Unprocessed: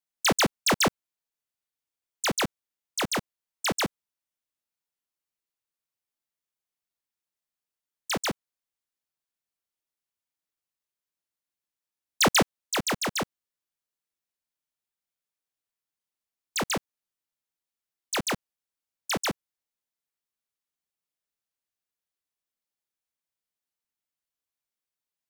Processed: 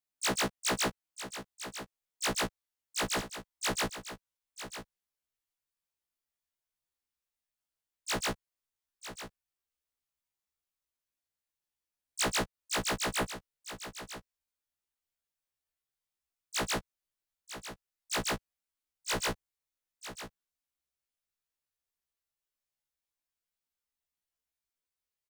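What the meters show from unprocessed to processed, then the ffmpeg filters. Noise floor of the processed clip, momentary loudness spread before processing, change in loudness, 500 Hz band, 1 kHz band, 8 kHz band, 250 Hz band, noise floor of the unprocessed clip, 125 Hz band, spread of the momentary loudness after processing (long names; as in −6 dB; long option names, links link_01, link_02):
below −85 dBFS, 11 LU, −7.5 dB, −6.0 dB, −6.0 dB, −4.5 dB, −7.5 dB, below −85 dBFS, −5.5 dB, 16 LU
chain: -af "asubboost=boost=3:cutoff=97,acompressor=threshold=-27dB:ratio=6,aecho=1:1:949:0.266,afftfilt=real='re*1.73*eq(mod(b,3),0)':imag='im*1.73*eq(mod(b,3),0)':win_size=2048:overlap=0.75"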